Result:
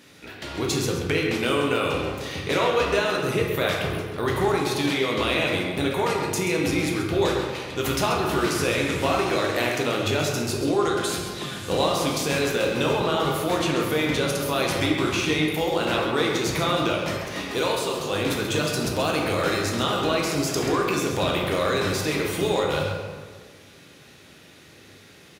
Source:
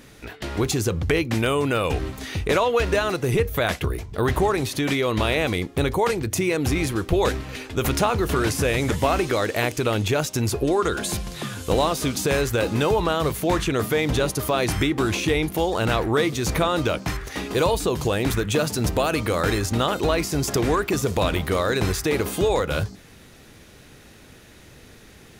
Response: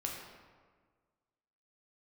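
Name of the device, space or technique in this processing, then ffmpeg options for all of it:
PA in a hall: -filter_complex "[0:a]asettb=1/sr,asplit=3[a][b][c];[a]atrim=end=17.584[d];[b]atrim=start=17.58:end=18.11,asetpts=PTS-STARTPTS,afade=t=in:d=0.004:c=qsin,afade=t=out:st=0.526:d=0.004:c=qsin,lowshelf=f=340:g=-8.5[e];[c]atrim=start=18.106[f];[d][e]acrossfade=d=0.004:c1=hsin:c2=qsin[g];[g][f]acrossfade=d=0.004:c1=qsin:c2=hsin,highpass=120,equalizer=f=3.7k:t=o:w=1.6:g=5,aecho=1:1:133:0.316[h];[1:a]atrim=start_sample=2205[i];[h][i]afir=irnorm=-1:irlink=0,volume=-3.5dB"

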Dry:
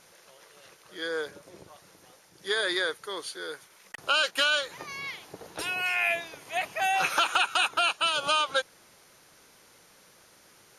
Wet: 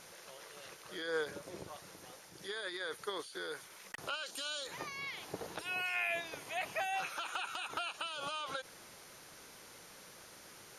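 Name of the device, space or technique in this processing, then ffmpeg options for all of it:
de-esser from a sidechain: -filter_complex "[0:a]asplit=2[a][b];[b]highpass=f=4.2k:w=0.5412,highpass=f=4.2k:w=1.3066,apad=whole_len=475453[c];[a][c]sidechaincompress=threshold=-54dB:ratio=6:attack=2.5:release=34,asettb=1/sr,asplit=3[d][e][f];[d]atrim=end=4.264[g];[e]atrim=start=4.26:end=4.67,asetpts=PTS-STARTPTS,afade=t=in:d=0.004:c=qsin,afade=t=out:st=0.406:d=0.004:c=qsin,equalizer=f=125:t=o:w=1:g=-11,equalizer=f=250:t=o:w=1:g=7,equalizer=f=2k:t=o:w=1:g=-8,equalizer=f=4k:t=o:w=1:g=5,equalizer=f=8k:t=o:w=1:g=10[h];[f]atrim=start=4.666[i];[g][h]acrossfade=d=0.004:c1=hsin:c2=qsin[j];[j][i]acrossfade=d=0.004:c1=qsin:c2=hsin,volume=2.5dB"

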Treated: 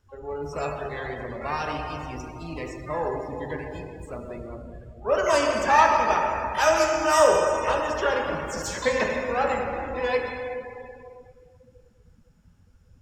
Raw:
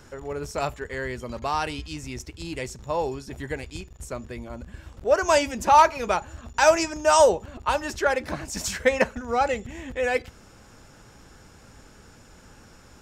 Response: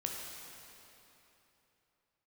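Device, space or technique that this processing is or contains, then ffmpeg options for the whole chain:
shimmer-style reverb: -filter_complex "[0:a]asplit=3[a][b][c];[a]afade=t=out:st=3.24:d=0.02[d];[b]highpass=51,afade=t=in:st=3.24:d=0.02,afade=t=out:st=3.91:d=0.02[e];[c]afade=t=in:st=3.91:d=0.02[f];[d][e][f]amix=inputs=3:normalize=0,asplit=2[g][h];[h]asetrate=88200,aresample=44100,atempo=0.5,volume=-10dB[i];[g][i]amix=inputs=2:normalize=0[j];[1:a]atrim=start_sample=2205[k];[j][k]afir=irnorm=-1:irlink=0,afftdn=nr=19:nf=-37,volume=-2.5dB"

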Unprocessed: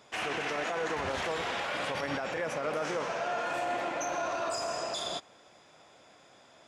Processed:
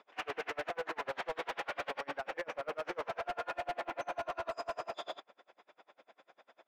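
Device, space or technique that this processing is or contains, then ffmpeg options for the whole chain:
helicopter radio: -af "highpass=380,lowpass=2.6k,aeval=exprs='val(0)*pow(10,-33*(0.5-0.5*cos(2*PI*10*n/s))/20)':c=same,asoftclip=type=hard:threshold=-34.5dB,volume=3dB"

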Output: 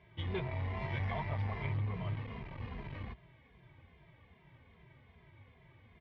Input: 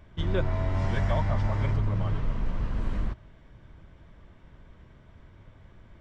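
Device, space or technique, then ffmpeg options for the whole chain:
barber-pole flanger into a guitar amplifier: -filter_complex "[0:a]asplit=2[a][b];[b]adelay=2.5,afreqshift=-2.5[c];[a][c]amix=inputs=2:normalize=1,asoftclip=type=tanh:threshold=-25dB,highpass=100,equalizer=f=200:t=q:w=4:g=-7,equalizer=f=300:t=q:w=4:g=-8,equalizer=f=570:t=q:w=4:g=-6,equalizer=f=1.4k:t=q:w=4:g=-10,equalizer=f=2.2k:t=q:w=4:g=7,lowpass=f=3.9k:w=0.5412,lowpass=f=3.9k:w=1.3066"

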